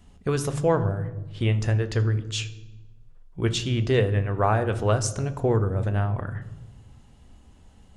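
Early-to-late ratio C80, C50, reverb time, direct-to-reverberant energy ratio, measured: 17.0 dB, 14.0 dB, 1.2 s, 9.5 dB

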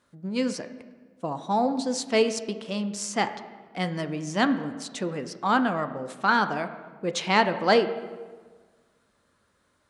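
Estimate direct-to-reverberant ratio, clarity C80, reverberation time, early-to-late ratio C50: 9.0 dB, 13.0 dB, 1.5 s, 11.5 dB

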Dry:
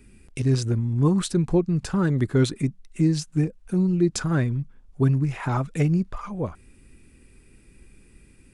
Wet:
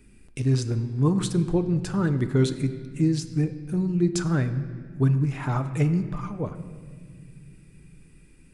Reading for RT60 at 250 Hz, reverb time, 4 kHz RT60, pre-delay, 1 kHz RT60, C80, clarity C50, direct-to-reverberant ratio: 3.5 s, 1.9 s, 1.4 s, 7 ms, 1.6 s, 12.5 dB, 11.5 dB, 8.5 dB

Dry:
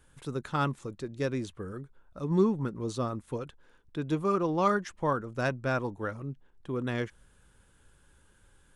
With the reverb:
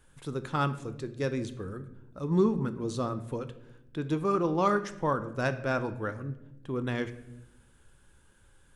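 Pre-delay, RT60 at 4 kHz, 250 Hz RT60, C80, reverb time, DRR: 5 ms, 0.55 s, 1.4 s, 16.0 dB, 0.90 s, 10.5 dB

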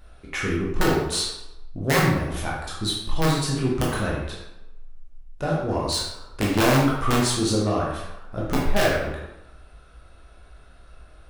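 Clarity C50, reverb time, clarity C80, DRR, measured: 1.0 dB, 0.95 s, 4.5 dB, -5.0 dB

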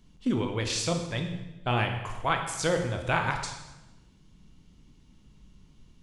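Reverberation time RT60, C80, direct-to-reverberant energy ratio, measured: 1.1 s, 8.5 dB, 4.0 dB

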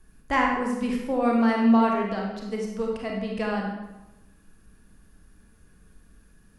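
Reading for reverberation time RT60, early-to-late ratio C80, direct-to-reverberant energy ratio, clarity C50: 1.0 s, 5.0 dB, -1.0 dB, 1.5 dB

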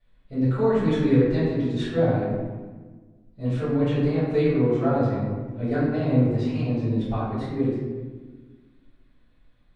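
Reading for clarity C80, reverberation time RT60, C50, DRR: 1.0 dB, 1.4 s, -1.5 dB, -15.0 dB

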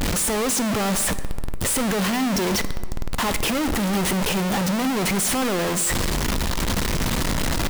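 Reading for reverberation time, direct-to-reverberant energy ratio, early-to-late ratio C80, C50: 1.5 s, 11.5 dB, 14.5 dB, 13.5 dB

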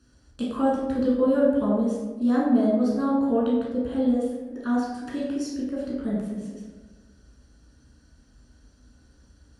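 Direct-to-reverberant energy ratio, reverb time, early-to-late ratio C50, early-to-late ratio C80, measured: -4.5 dB, 1.3 s, 1.0 dB, 3.5 dB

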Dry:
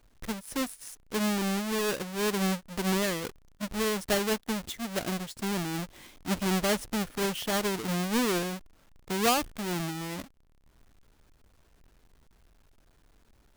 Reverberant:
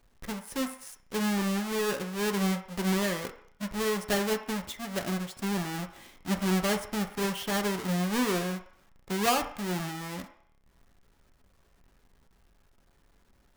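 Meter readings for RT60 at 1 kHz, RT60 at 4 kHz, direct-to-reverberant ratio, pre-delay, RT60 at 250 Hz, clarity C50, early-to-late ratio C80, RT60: 0.65 s, 0.60 s, 3.5 dB, 3 ms, 0.45 s, 11.0 dB, 14.0 dB, 0.60 s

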